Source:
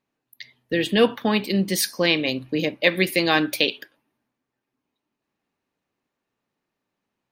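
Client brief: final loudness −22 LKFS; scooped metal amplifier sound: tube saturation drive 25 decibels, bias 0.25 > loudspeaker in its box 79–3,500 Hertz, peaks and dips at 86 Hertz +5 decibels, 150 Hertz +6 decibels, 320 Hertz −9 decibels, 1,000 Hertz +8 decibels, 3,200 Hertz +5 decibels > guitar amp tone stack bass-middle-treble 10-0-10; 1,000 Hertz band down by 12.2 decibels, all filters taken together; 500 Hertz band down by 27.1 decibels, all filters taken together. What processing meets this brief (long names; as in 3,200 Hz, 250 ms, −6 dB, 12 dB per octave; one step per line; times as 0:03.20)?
parametric band 500 Hz −8.5 dB
parametric band 1,000 Hz −4.5 dB
tube saturation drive 25 dB, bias 0.25
loudspeaker in its box 79–3,500 Hz, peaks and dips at 86 Hz +5 dB, 150 Hz +6 dB, 320 Hz −9 dB, 1,000 Hz +8 dB, 3,200 Hz +5 dB
guitar amp tone stack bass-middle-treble 10-0-10
level +14 dB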